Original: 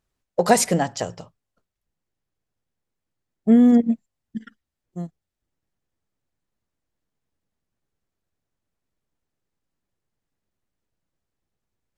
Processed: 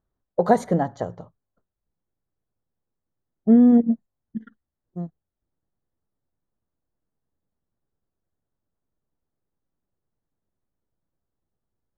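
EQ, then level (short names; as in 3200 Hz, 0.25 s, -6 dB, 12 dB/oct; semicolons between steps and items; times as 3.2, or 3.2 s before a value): running mean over 17 samples; 0.0 dB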